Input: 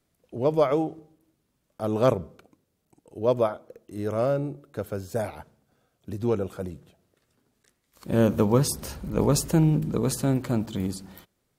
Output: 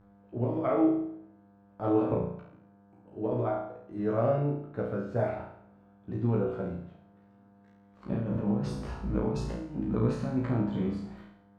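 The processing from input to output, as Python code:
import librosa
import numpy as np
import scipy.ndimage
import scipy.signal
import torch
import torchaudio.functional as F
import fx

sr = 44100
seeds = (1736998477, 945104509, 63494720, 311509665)

y = scipy.signal.sosfilt(scipy.signal.butter(2, 1800.0, 'lowpass', fs=sr, output='sos'), x)
y = fx.peak_eq(y, sr, hz=510.0, db=-3.5, octaves=0.29)
y = fx.over_compress(y, sr, threshold_db=-25.0, ratio=-0.5)
y = fx.dmg_buzz(y, sr, base_hz=100.0, harmonics=17, level_db=-53.0, tilt_db=-7, odd_only=False)
y = fx.doubler(y, sr, ms=16.0, db=-2)
y = fx.room_flutter(y, sr, wall_m=5.9, rt60_s=0.65)
y = F.gain(torch.from_numpy(y), -6.0).numpy()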